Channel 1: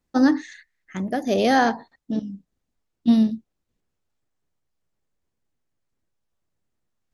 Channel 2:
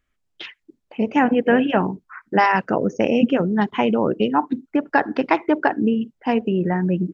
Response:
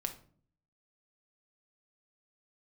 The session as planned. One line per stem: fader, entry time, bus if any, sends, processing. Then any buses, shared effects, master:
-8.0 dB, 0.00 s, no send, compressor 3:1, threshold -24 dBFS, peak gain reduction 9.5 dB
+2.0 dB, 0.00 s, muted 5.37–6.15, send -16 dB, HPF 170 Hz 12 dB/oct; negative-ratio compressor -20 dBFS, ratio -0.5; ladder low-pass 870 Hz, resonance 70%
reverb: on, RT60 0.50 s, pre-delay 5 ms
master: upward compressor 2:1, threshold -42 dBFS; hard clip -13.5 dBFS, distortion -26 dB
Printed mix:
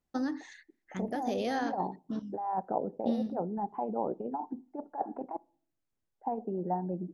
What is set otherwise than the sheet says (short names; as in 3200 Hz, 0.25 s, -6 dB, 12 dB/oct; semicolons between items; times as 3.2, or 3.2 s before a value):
stem 2 +2.0 dB -> -6.5 dB; master: missing upward compressor 2:1, threshold -42 dBFS